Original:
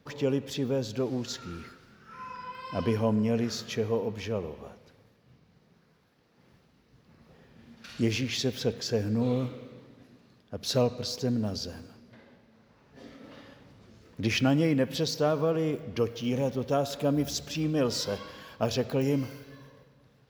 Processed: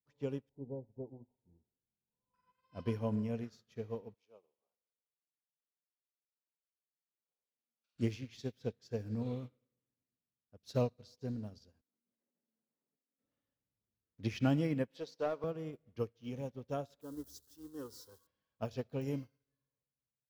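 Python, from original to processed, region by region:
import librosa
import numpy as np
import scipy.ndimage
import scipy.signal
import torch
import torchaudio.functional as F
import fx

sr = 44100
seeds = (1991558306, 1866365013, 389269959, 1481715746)

y = fx.chain(x, sr, fx.cvsd(bps=32000),
    fx.brickwall_lowpass(high_hz=1000.0),
    fx.hum_notches(base_hz=50, count=7), at=(0.49, 2.34))
y = fx.chain(y, sr, fx.highpass(hz=460.0, slope=12),
    fx.peak_eq(hz=1800.0, db=-14.5, octaves=0.35), at=(4.14, 7.96))
y = fx.chain(y, sr, fx.highpass(hz=230.0, slope=24),
    fx.tilt_eq(slope=-4.0),
    fx.over_compress(threshold_db=-54.0, ratio=-1.0), at=(11.81, 13.19))
y = fx.chain(y, sr, fx.highpass(hz=360.0, slope=12),
    fx.high_shelf(hz=6700.0, db=-11.0),
    fx.leveller(passes=1), at=(14.88, 15.44))
y = fx.chain(y, sr, fx.crossing_spikes(level_db=-27.5),
    fx.fixed_phaser(hz=640.0, stages=6), at=(17.01, 18.27))
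y = fx.low_shelf(y, sr, hz=110.0, db=9.5)
y = fx.upward_expand(y, sr, threshold_db=-44.0, expansion=2.5)
y = F.gain(torch.from_numpy(y), -7.0).numpy()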